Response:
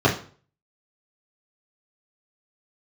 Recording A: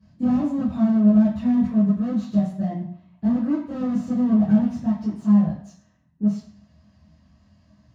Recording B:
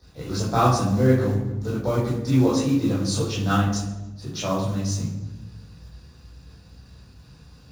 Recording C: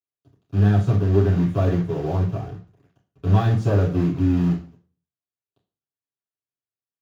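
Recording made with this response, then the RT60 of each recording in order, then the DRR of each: C; 0.60, 1.1, 0.40 seconds; −11.0, −8.0, −6.5 decibels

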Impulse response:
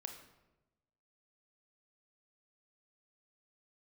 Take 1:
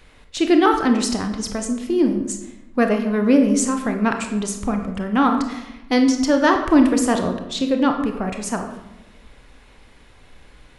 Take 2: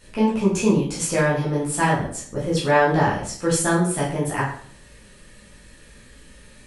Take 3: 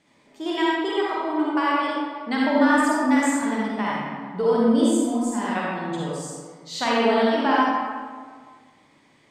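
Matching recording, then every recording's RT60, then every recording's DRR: 1; 1.0, 0.55, 1.7 seconds; 4.5, −8.0, −6.0 decibels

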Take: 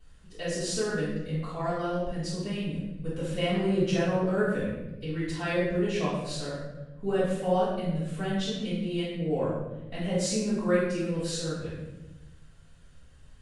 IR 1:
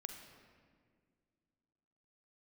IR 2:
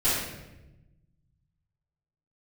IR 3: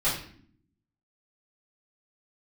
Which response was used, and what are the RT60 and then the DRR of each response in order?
2; 2.0, 1.0, 0.55 seconds; 5.5, −14.0, −12.5 decibels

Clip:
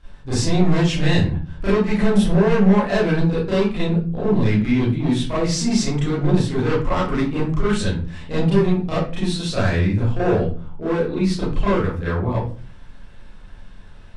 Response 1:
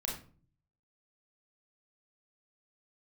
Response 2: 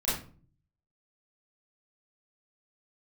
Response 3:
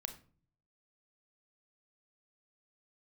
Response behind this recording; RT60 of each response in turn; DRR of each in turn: 2; 0.40, 0.40, 0.45 seconds; −2.5, −11.0, 7.0 decibels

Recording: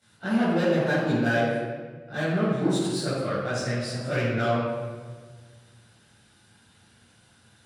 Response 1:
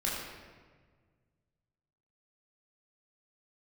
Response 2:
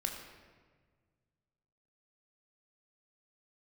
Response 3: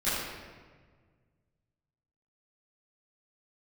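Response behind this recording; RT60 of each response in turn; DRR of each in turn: 3; 1.6, 1.6, 1.6 seconds; −5.5, 2.0, −15.0 decibels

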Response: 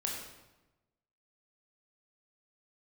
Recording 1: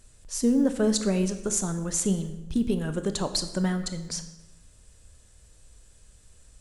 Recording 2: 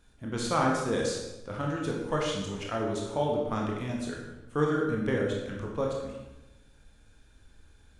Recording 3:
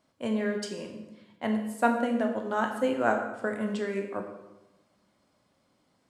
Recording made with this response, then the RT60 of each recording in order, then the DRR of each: 2; 1.0, 1.0, 1.0 seconds; 8.5, −2.0, 3.5 decibels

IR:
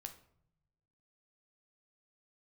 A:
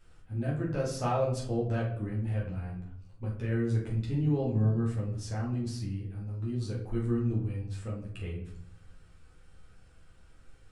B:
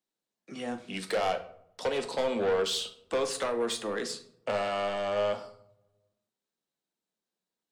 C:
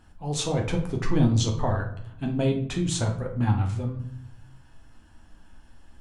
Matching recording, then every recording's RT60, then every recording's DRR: B; 0.65, 0.70, 0.65 seconds; −5.5, 5.5, 0.5 decibels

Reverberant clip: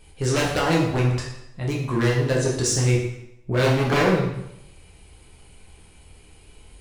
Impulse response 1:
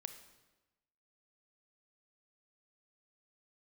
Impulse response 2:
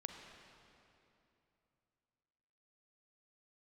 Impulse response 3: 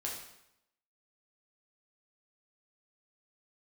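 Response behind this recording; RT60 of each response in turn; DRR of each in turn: 3; 1.1, 2.9, 0.80 seconds; 8.5, 3.5, −3.5 decibels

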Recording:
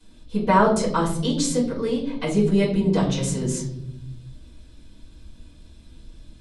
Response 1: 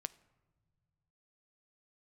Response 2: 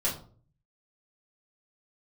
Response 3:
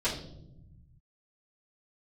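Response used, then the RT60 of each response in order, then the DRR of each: 3; non-exponential decay, 0.45 s, 0.85 s; 15.0, −6.5, −11.5 decibels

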